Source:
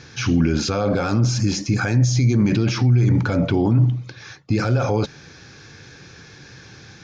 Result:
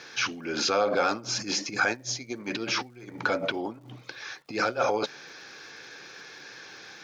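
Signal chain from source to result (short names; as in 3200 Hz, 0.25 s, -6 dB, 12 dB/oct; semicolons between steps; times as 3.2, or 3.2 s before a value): negative-ratio compressor -20 dBFS, ratio -0.5; BPF 460–6000 Hz; crackle 400/s -53 dBFS; gain -2 dB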